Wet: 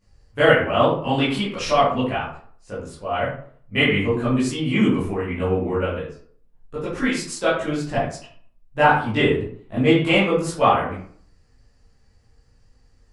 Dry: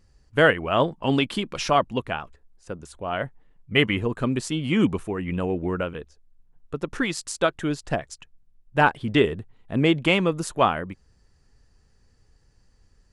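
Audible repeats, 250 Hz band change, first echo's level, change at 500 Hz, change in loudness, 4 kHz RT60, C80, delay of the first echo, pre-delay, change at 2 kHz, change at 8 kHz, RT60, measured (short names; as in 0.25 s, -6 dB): none, +3.0 dB, none, +4.0 dB, +3.0 dB, 0.30 s, 7.5 dB, none, 13 ms, +3.0 dB, +0.5 dB, 0.55 s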